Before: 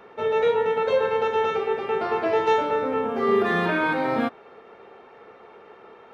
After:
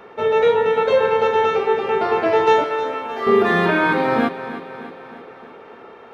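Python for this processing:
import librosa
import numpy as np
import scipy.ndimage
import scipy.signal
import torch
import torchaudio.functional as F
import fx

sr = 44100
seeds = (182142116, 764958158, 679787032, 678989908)

p1 = fx.highpass(x, sr, hz=1300.0, slope=6, at=(2.64, 3.27))
p2 = p1 + fx.echo_feedback(p1, sr, ms=310, feedback_pct=56, wet_db=-13, dry=0)
y = F.gain(torch.from_numpy(p2), 5.5).numpy()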